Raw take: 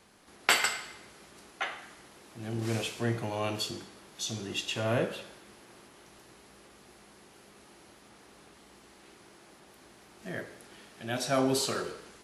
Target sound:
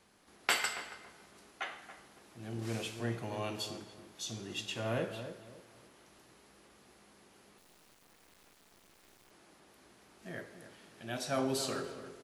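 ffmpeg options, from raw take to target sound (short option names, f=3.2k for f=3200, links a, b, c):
-filter_complex "[0:a]asplit=2[a][b];[b]adelay=279,lowpass=f=1.2k:p=1,volume=-10dB,asplit=2[c][d];[d]adelay=279,lowpass=f=1.2k:p=1,volume=0.31,asplit=2[e][f];[f]adelay=279,lowpass=f=1.2k:p=1,volume=0.31[g];[a][c][e][g]amix=inputs=4:normalize=0,asettb=1/sr,asplit=3[h][i][j];[h]atrim=end=7.584[k];[i]atrim=start=7.58:end=9.31,asetpts=PTS-STARTPTS,afade=t=in:d=0.004:c=qsin,afade=t=out:st=1.726:d=0.004:c=qsin,acrusher=bits=6:dc=4:mix=0:aa=0.000001[l];[j]atrim=start=9.306[m];[k][l]acrossfade=d=0.004:c1=hsin:c2=qsin[n];[n][m]acrossfade=d=0.004:c1=qsin:c2=hsin,volume=-6dB"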